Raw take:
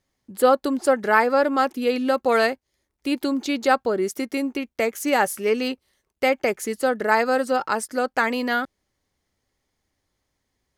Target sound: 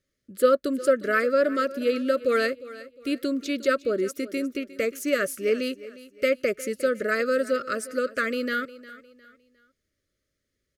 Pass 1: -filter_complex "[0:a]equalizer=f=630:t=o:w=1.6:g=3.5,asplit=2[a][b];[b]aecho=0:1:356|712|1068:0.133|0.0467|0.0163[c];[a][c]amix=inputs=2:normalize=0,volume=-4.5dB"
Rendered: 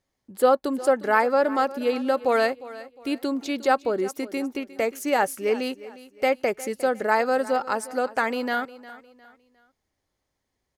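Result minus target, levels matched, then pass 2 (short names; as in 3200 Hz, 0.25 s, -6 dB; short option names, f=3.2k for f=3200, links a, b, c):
1000 Hz band +6.5 dB
-filter_complex "[0:a]asuperstop=centerf=860:order=12:qfactor=1.6,equalizer=f=630:t=o:w=1.6:g=3.5,asplit=2[a][b];[b]aecho=0:1:356|712|1068:0.133|0.0467|0.0163[c];[a][c]amix=inputs=2:normalize=0,volume=-4.5dB"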